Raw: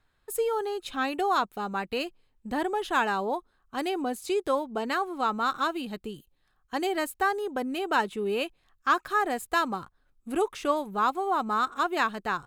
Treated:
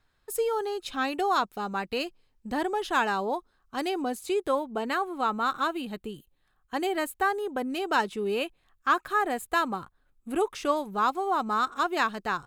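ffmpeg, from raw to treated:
-af "asetnsamples=n=441:p=0,asendcmd='4.19 equalizer g -5;7.7 equalizer g 6;8.39 equalizer g -5;10.53 equalizer g 4',equalizer=f=5.3k:t=o:w=0.54:g=4.5"

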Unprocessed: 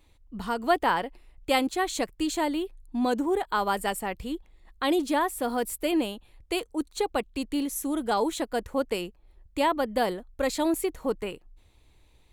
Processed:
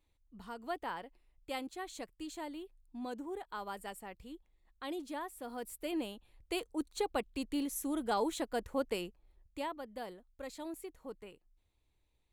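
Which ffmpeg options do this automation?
-af "volume=-7dB,afade=t=in:st=5.45:d=1.27:silence=0.354813,afade=t=out:st=9.06:d=0.71:silence=0.281838"

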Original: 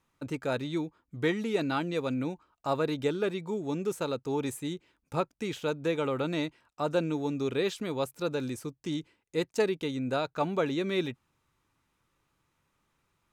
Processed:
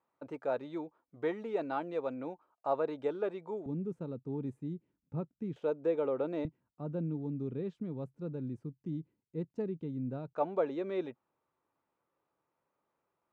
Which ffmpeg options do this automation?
-af "asetnsamples=n=441:p=0,asendcmd='3.66 bandpass f 170;5.56 bandpass f 510;6.45 bandpass f 160;10.33 bandpass f 600',bandpass=f=670:t=q:w=1.4:csg=0"

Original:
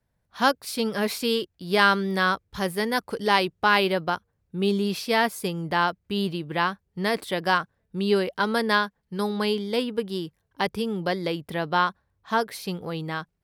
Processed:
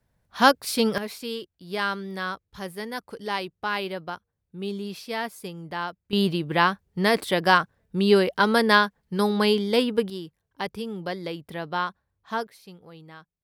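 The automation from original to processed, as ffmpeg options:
-af "asetnsamples=n=441:p=0,asendcmd='0.98 volume volume -8dB;6.13 volume volume 4dB;10.1 volume volume -5dB;12.47 volume volume -15dB',volume=4dB"

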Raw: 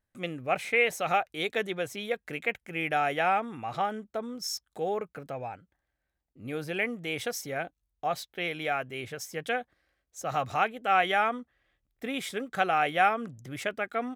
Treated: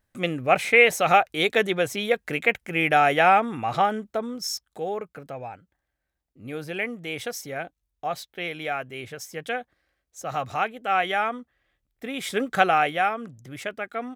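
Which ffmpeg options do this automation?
-af "volume=17dB,afade=t=out:st=3.72:d=1.13:silence=0.421697,afade=t=in:st=12.17:d=0.26:silence=0.375837,afade=t=out:st=12.43:d=0.59:silence=0.334965"

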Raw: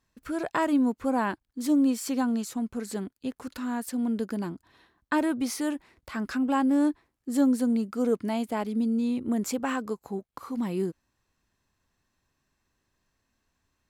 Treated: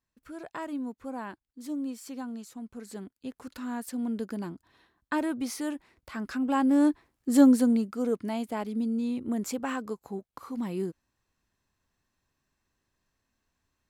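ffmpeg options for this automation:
-af "volume=5dB,afade=t=in:st=2.55:d=1.18:silence=0.421697,afade=t=in:st=6.33:d=1.09:silence=0.375837,afade=t=out:st=7.42:d=0.54:silence=0.398107"

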